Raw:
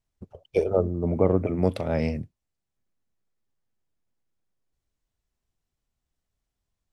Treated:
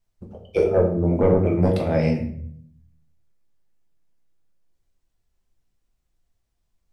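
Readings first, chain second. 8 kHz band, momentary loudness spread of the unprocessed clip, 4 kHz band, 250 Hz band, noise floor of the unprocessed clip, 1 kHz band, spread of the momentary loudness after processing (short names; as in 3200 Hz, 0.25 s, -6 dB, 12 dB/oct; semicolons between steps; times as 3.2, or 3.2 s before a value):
n/a, 7 LU, +3.5 dB, +5.0 dB, -85 dBFS, +4.0 dB, 13 LU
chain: soft clip -11 dBFS, distortion -18 dB; shoebox room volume 96 m³, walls mixed, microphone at 0.8 m; gain +1.5 dB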